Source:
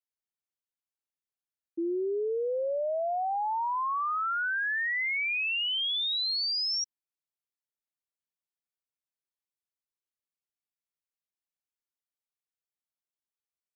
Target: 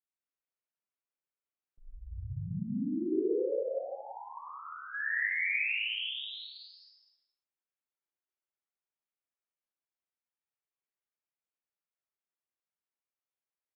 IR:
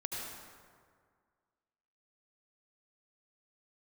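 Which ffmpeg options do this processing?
-filter_complex "[0:a]asplit=3[link_01][link_02][link_03];[link_01]afade=type=out:start_time=3.54:duration=0.02[link_04];[link_02]agate=range=-33dB:threshold=-20dB:ratio=3:detection=peak,afade=type=in:start_time=3.54:duration=0.02,afade=type=out:start_time=4.93:duration=0.02[link_05];[link_03]afade=type=in:start_time=4.93:duration=0.02[link_06];[link_04][link_05][link_06]amix=inputs=3:normalize=0,flanger=delay=8.4:depth=7.6:regen=-73:speed=1.5:shape=triangular,aecho=1:1:61.22|221.6:0.708|0.282[link_07];[1:a]atrim=start_sample=2205,afade=type=out:start_time=0.43:duration=0.01,atrim=end_sample=19404[link_08];[link_07][link_08]afir=irnorm=-1:irlink=0,highpass=frequency=540:width_type=q:width=0.5412,highpass=frequency=540:width_type=q:width=1.307,lowpass=frequency=3200:width_type=q:width=0.5176,lowpass=frequency=3200:width_type=q:width=0.7071,lowpass=frequency=3200:width_type=q:width=1.932,afreqshift=-320"

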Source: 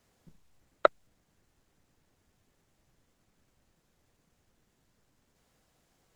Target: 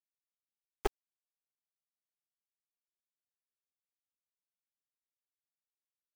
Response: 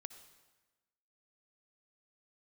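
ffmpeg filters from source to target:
-af "asoftclip=type=hard:threshold=-14.5dB,asetrate=28595,aresample=44100,atempo=1.54221,equalizer=frequency=125:width_type=o:width=1:gain=-11,equalizer=frequency=250:width_type=o:width=1:gain=-9,equalizer=frequency=500:width_type=o:width=1:gain=9,equalizer=frequency=1000:width_type=o:width=1:gain=-8,equalizer=frequency=4000:width_type=o:width=1:gain=-8,alimiter=limit=-19.5dB:level=0:latency=1:release=17,tremolo=f=86:d=0.621,highshelf=frequency=2400:gain=8,acrusher=bits=4:dc=4:mix=0:aa=0.000001,volume=6.5dB"

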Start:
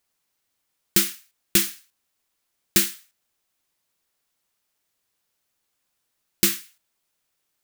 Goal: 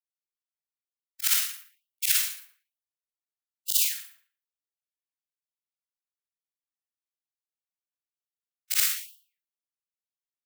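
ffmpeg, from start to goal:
ffmpeg -i in.wav -filter_complex "[0:a]afftfilt=real='re':imag='-im':win_size=4096:overlap=0.75,afftdn=noise_reduction=30:noise_floor=-50,asplit=2[link_01][link_02];[link_02]acompressor=threshold=-37dB:ratio=20,volume=3dB[link_03];[link_01][link_03]amix=inputs=2:normalize=0,atempo=0.73,asplit=2[link_04][link_05];[link_05]adelay=116,lowpass=frequency=2100:poles=1,volume=-11.5dB,asplit=2[link_06][link_07];[link_07]adelay=116,lowpass=frequency=2100:poles=1,volume=0.33,asplit=2[link_08][link_09];[link_09]adelay=116,lowpass=frequency=2100:poles=1,volume=0.33[link_10];[link_06][link_08][link_10]amix=inputs=3:normalize=0[link_11];[link_04][link_11]amix=inputs=2:normalize=0,afftfilt=real='re*gte(b*sr/1024,560*pow(2800/560,0.5+0.5*sin(2*PI*1.1*pts/sr)))':imag='im*gte(b*sr/1024,560*pow(2800/560,0.5+0.5*sin(2*PI*1.1*pts/sr)))':win_size=1024:overlap=0.75" out.wav

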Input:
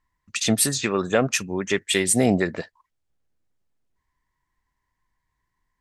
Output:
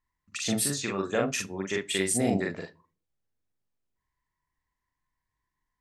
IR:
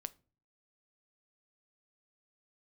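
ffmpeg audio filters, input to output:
-filter_complex "[0:a]asplit=2[link_01][link_02];[link_02]highpass=55[link_03];[1:a]atrim=start_sample=2205,adelay=42[link_04];[link_03][link_04]afir=irnorm=-1:irlink=0,volume=2dB[link_05];[link_01][link_05]amix=inputs=2:normalize=0,volume=-9dB"

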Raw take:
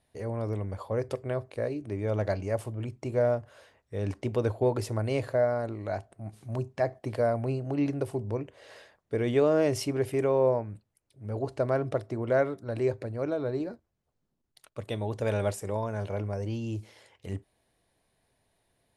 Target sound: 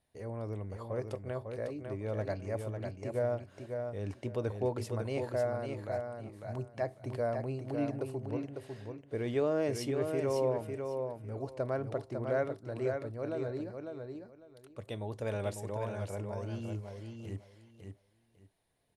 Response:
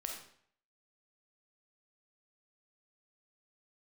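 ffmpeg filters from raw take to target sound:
-af "aecho=1:1:550|1100|1650:0.531|0.106|0.0212,volume=-7dB"

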